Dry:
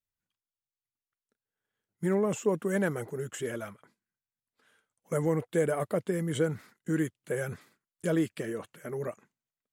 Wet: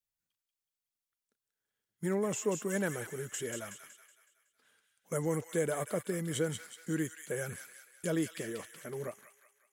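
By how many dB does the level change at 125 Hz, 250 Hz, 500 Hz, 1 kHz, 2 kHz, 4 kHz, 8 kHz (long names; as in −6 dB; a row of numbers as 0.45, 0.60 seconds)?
−5.0, −5.0, −5.0, −4.0, −2.5, +1.0, +4.0 decibels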